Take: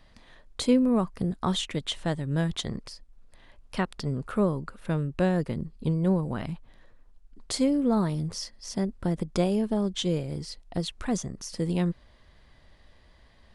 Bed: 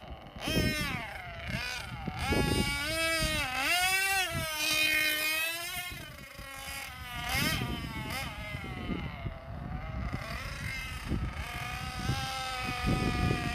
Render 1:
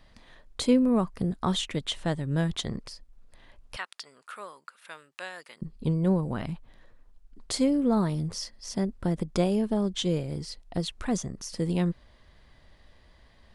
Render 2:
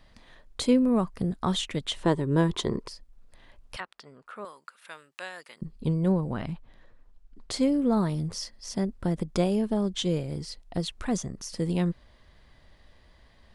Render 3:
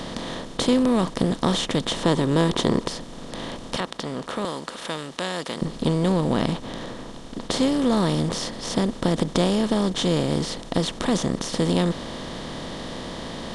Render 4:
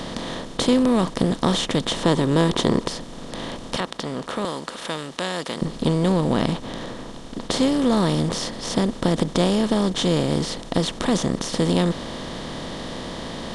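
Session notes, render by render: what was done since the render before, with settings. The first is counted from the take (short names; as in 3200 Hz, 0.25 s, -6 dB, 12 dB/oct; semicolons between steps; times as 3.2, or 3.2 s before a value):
3.76–5.62 HPF 1400 Hz
2.03–2.88 small resonant body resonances 390/980 Hz, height 13 dB, ringing for 20 ms; 3.8–4.45 tilt -4.5 dB/oct; 6.12–7.63 high shelf 9000 Hz -10.5 dB
per-bin compression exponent 0.4
gain +1.5 dB; limiter -2 dBFS, peak gain reduction 2 dB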